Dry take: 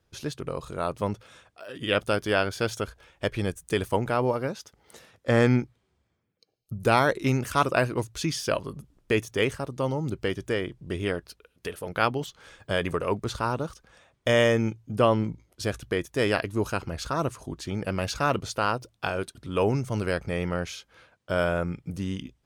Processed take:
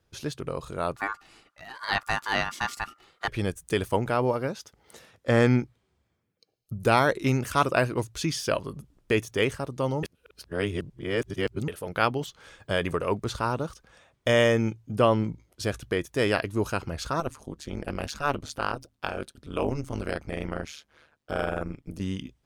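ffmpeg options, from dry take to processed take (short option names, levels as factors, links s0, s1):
-filter_complex "[0:a]asettb=1/sr,asplit=3[s0][s1][s2];[s0]atrim=end=0.964[s3];[s1]atrim=start=0.96:end=3.28,asetpts=PTS-STARTPTS,afade=t=in:d=0.004:c=qsin,afade=t=out:st=2.316:d=0.004:c=qsin,aeval=exprs='val(0)*sin(2*PI*1300*n/s)':c=same[s4];[s2]atrim=start=3.276[s5];[s3][s4]acrossfade=d=0.004:c1=hsin:c2=qsin[s6];[s6][s5]acrossfade=d=0.004:c1=qsin:c2=hsin,asettb=1/sr,asplit=3[s7][s8][s9];[s7]atrim=end=17.204[s10];[s8]atrim=start=17.2:end=22.01,asetpts=PTS-STARTPTS,afade=t=in:d=0.004:c=qsin,afade=t=out:st=4.806:d=0.004:c=qsin,tremolo=f=150:d=1[s11];[s9]atrim=start=22.006[s12];[s10][s11]acrossfade=d=0.004:c1=hsin:c2=qsin[s13];[s13][s12]acrossfade=d=0.004:c1=qsin:c2=hsin,asplit=3[s14][s15][s16];[s14]atrim=end=10.032[s17];[s15]atrim=start=10.028:end=11.682,asetpts=PTS-STARTPTS,areverse[s18];[s16]atrim=start=11.678[s19];[s17][s18]acrossfade=d=0.004:c1=hsin:c2=hsin[s20];[s20][s19]acrossfade=d=0.004:c1=hsin:c2=hsin"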